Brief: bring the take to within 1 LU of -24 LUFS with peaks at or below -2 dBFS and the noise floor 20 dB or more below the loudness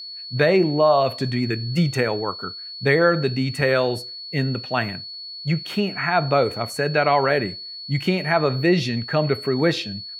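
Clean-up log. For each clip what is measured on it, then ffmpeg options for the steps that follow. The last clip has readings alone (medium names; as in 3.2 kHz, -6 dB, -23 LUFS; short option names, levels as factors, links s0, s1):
steady tone 4.4 kHz; tone level -33 dBFS; loudness -21.5 LUFS; peak level -3.5 dBFS; loudness target -24.0 LUFS
-> -af "bandreject=f=4400:w=30"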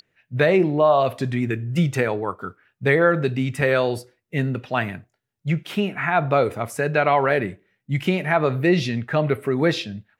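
steady tone not found; loudness -21.5 LUFS; peak level -4.0 dBFS; loudness target -24.0 LUFS
-> -af "volume=0.75"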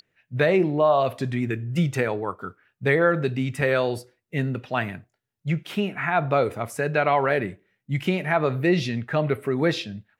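loudness -24.0 LUFS; peak level -6.5 dBFS; noise floor -79 dBFS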